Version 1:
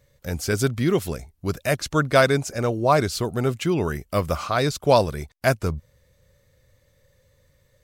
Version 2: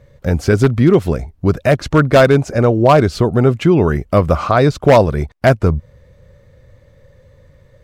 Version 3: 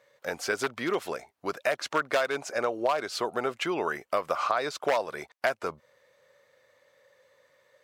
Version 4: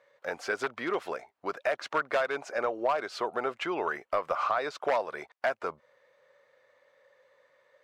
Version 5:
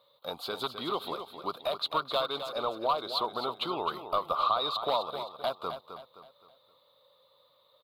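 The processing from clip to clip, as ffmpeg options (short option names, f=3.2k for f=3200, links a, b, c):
-filter_complex "[0:a]lowpass=f=1.1k:p=1,asplit=2[a][b];[b]acompressor=threshold=-28dB:ratio=5,volume=3dB[c];[a][c]amix=inputs=2:normalize=0,aeval=exprs='0.355*(abs(mod(val(0)/0.355+3,4)-2)-1)':c=same,volume=7.5dB"
-af "highpass=740,acompressor=threshold=-18dB:ratio=6,volume=-4.5dB"
-filter_complex "[0:a]asplit=2[a][b];[b]highpass=f=720:p=1,volume=12dB,asoftclip=type=tanh:threshold=-8.5dB[c];[a][c]amix=inputs=2:normalize=0,lowpass=f=1.4k:p=1,volume=-6dB,volume=-4dB"
-filter_complex "[0:a]firequalizer=gain_entry='entry(150,0);entry(380,-8);entry(680,-6);entry(1200,0);entry(1700,-25);entry(3800,14);entry(5700,-17);entry(12000,9)':delay=0.05:min_phase=1,asplit=2[a][b];[b]aecho=0:1:261|522|783|1044:0.335|0.134|0.0536|0.0214[c];[a][c]amix=inputs=2:normalize=0,volume=3.5dB"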